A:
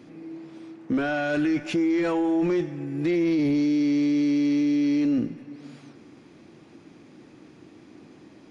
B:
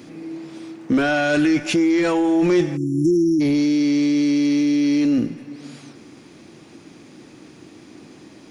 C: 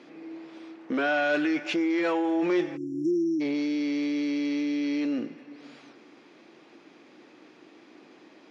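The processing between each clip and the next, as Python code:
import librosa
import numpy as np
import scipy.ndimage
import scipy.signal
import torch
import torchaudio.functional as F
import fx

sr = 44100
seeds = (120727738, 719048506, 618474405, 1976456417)

y1 = fx.spec_erase(x, sr, start_s=2.77, length_s=0.64, low_hz=400.0, high_hz=5300.0)
y1 = fx.high_shelf(y1, sr, hz=4400.0, db=11.0)
y1 = fx.rider(y1, sr, range_db=10, speed_s=0.5)
y1 = y1 * librosa.db_to_amplitude(5.5)
y2 = fx.bandpass_edges(y1, sr, low_hz=370.0, high_hz=3500.0)
y2 = y2 * librosa.db_to_amplitude(-4.5)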